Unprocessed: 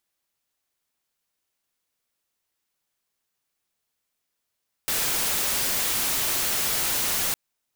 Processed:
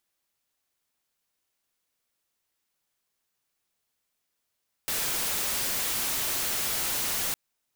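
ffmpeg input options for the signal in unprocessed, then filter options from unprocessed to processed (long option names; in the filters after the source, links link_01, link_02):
-f lavfi -i "anoisesrc=color=white:amplitude=0.0974:duration=2.46:sample_rate=44100:seed=1"
-af "asoftclip=type=tanh:threshold=-26dB"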